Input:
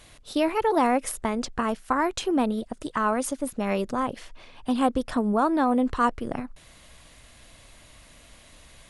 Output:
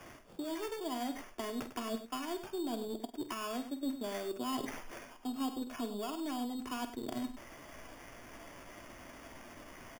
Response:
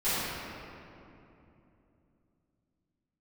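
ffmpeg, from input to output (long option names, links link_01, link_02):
-filter_complex "[0:a]acrossover=split=190 5700:gain=0.0794 1 0.178[link_01][link_02][link_03];[link_01][link_02][link_03]amix=inputs=3:normalize=0,acrossover=split=190|4100[link_04][link_05][link_06];[link_04]acompressor=threshold=-49dB:ratio=4[link_07];[link_05]acompressor=threshold=-31dB:ratio=4[link_08];[link_06]acompressor=threshold=-60dB:ratio=4[link_09];[link_07][link_08][link_09]amix=inputs=3:normalize=0,lowshelf=frequency=270:gain=11,asplit=2[link_10][link_11];[link_11]alimiter=level_in=1.5dB:limit=-24dB:level=0:latency=1:release=236,volume=-1.5dB,volume=-0.5dB[link_12];[link_10][link_12]amix=inputs=2:normalize=0,aecho=1:1:2.9:0.67,areverse,acompressor=threshold=-32dB:ratio=12,areverse,atempo=0.89,aeval=exprs='0.075*(cos(1*acos(clip(val(0)/0.075,-1,1)))-cos(1*PI/2))+0.00422*(cos(2*acos(clip(val(0)/0.075,-1,1)))-cos(2*PI/2))+0.00266*(cos(7*acos(clip(val(0)/0.075,-1,1)))-cos(7*PI/2))':channel_layout=same,flanger=delay=7.2:depth=1.7:regen=75:speed=1.3:shape=triangular,acrusher=samples=11:mix=1:aa=0.000001,aecho=1:1:49|100:0.251|0.266,volume=1dB"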